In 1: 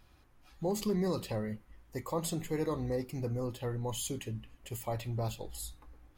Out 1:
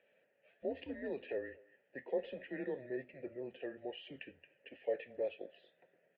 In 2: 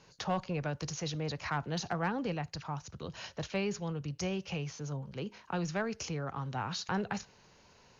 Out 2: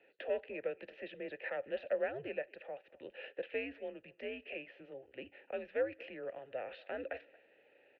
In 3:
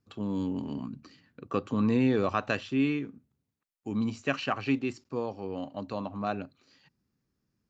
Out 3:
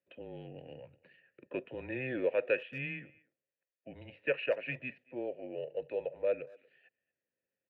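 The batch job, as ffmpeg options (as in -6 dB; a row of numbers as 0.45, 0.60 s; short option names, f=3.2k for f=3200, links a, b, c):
-filter_complex "[0:a]highpass=f=230:t=q:w=0.5412,highpass=f=230:t=q:w=1.307,lowpass=f=3.3k:t=q:w=0.5176,lowpass=f=3.3k:t=q:w=0.7071,lowpass=f=3.3k:t=q:w=1.932,afreqshift=-130,asplit=3[a][b][c];[a]bandpass=f=530:t=q:w=8,volume=0dB[d];[b]bandpass=f=1.84k:t=q:w=8,volume=-6dB[e];[c]bandpass=f=2.48k:t=q:w=8,volume=-9dB[f];[d][e][f]amix=inputs=3:normalize=0,asplit=2[g][h];[h]adelay=230,highpass=300,lowpass=3.4k,asoftclip=type=hard:threshold=-36dB,volume=-23dB[i];[g][i]amix=inputs=2:normalize=0,volume=9dB"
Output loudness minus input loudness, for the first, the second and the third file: -7.0, -5.0, -6.0 LU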